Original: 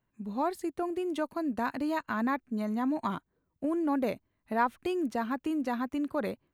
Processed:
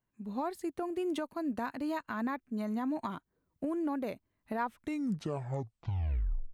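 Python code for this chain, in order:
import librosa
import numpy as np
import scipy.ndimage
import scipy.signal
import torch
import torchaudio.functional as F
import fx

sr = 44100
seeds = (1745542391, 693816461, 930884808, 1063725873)

y = fx.tape_stop_end(x, sr, length_s=1.92)
y = fx.recorder_agc(y, sr, target_db=-19.5, rise_db_per_s=15.0, max_gain_db=30)
y = y * 10.0 ** (-7.0 / 20.0)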